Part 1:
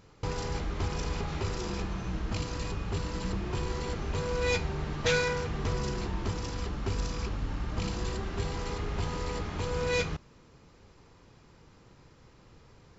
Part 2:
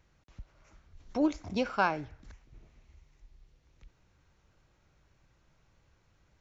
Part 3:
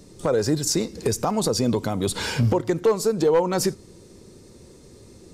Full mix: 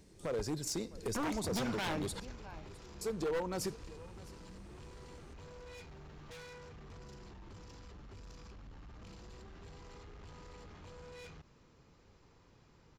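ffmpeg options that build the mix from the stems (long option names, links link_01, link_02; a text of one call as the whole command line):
ffmpeg -i stem1.wav -i stem2.wav -i stem3.wav -filter_complex "[0:a]asoftclip=type=tanh:threshold=-30.5dB,alimiter=level_in=16.5dB:limit=-24dB:level=0:latency=1:release=47,volume=-16.5dB,adelay=1250,volume=-7dB[link_01];[1:a]equalizer=frequency=1300:width=5.5:gain=-13.5,alimiter=level_in=0.5dB:limit=-24dB:level=0:latency=1:release=67,volume=-0.5dB,volume=1.5dB,asplit=2[link_02][link_03];[link_03]volume=-20.5dB[link_04];[2:a]volume=-14.5dB,asplit=3[link_05][link_06][link_07];[link_05]atrim=end=2.2,asetpts=PTS-STARTPTS,afade=type=out:start_time=2.196:duration=0.004:curve=hsin[link_08];[link_06]atrim=start=2.2:end=3.01,asetpts=PTS-STARTPTS,volume=0[link_09];[link_07]atrim=start=3.01,asetpts=PTS-STARTPTS,afade=type=in:duration=0.004:curve=hsin[link_10];[link_08][link_09][link_10]concat=n=3:v=0:a=1,asplit=2[link_11][link_12];[link_12]volume=-21dB[link_13];[link_04][link_13]amix=inputs=2:normalize=0,aecho=0:1:658:1[link_14];[link_01][link_02][link_11][link_14]amix=inputs=4:normalize=0,aeval=exprs='0.0335*(abs(mod(val(0)/0.0335+3,4)-2)-1)':channel_layout=same" out.wav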